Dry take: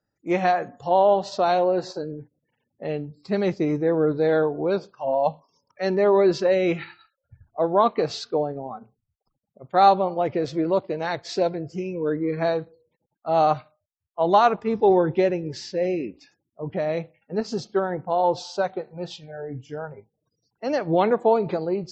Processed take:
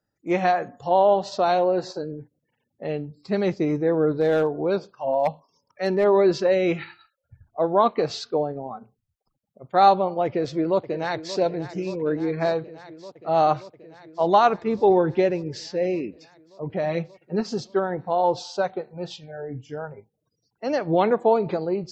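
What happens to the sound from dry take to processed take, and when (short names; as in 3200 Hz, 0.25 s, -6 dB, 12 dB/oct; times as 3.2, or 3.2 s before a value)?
4.15–6.04 hard clip -14 dBFS
10.25–11.37 echo throw 0.58 s, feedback 80%, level -14 dB
16.83–17.49 comb 5.4 ms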